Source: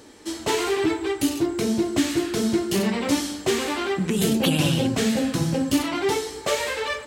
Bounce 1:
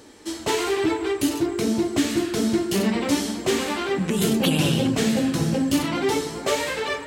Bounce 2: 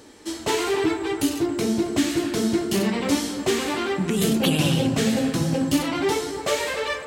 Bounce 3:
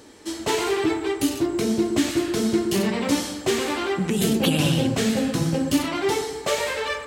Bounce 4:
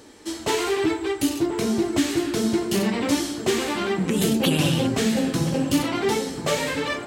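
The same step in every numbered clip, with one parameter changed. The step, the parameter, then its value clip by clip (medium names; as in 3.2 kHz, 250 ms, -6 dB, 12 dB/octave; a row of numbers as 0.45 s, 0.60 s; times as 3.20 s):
feedback echo behind a low-pass, time: 420 ms, 275 ms, 118 ms, 1034 ms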